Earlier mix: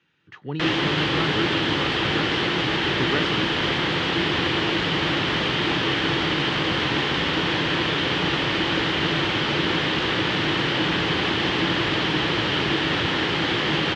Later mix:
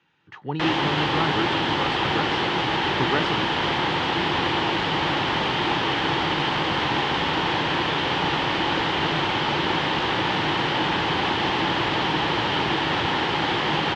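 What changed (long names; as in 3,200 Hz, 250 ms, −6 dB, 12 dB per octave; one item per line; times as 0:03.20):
background: send off
master: add parametric band 860 Hz +10 dB 0.64 octaves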